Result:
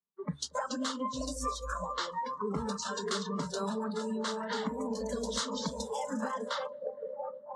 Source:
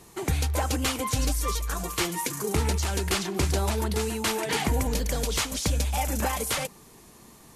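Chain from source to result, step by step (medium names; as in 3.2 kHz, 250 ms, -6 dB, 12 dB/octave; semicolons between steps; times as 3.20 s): tilt EQ -2 dB/octave; static phaser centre 490 Hz, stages 8; repeats whose band climbs or falls 619 ms, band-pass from 500 Hz, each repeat 0.7 oct, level -4 dB; in parallel at -7 dB: hard clipper -22.5 dBFS, distortion -13 dB; on the sum: level-controlled noise filter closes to 1.6 kHz, open at -18 dBFS; cabinet simulation 210–8200 Hz, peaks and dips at 330 Hz -6 dB, 490 Hz -8 dB, 3.8 kHz +7 dB; on a send: bucket-brigade echo 233 ms, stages 1024, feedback 80%, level -9.5 dB; on the sum: spectral noise reduction 23 dB; compression 6:1, threshold -35 dBFS, peak gain reduction 13 dB; three bands expanded up and down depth 70%; trim +3.5 dB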